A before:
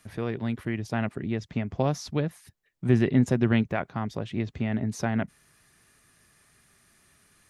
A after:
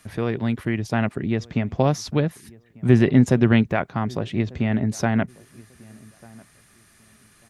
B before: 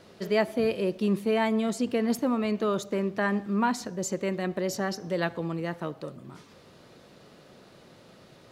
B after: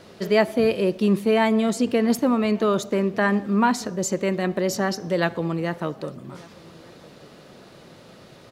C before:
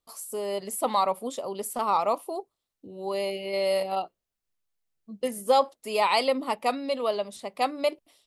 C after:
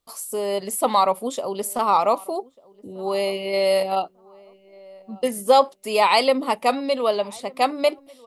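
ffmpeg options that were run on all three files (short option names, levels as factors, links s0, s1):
-filter_complex "[0:a]asplit=2[s0][s1];[s1]adelay=1194,lowpass=f=1500:p=1,volume=0.0631,asplit=2[s2][s3];[s3]adelay=1194,lowpass=f=1500:p=1,volume=0.23[s4];[s0][s2][s4]amix=inputs=3:normalize=0,volume=2"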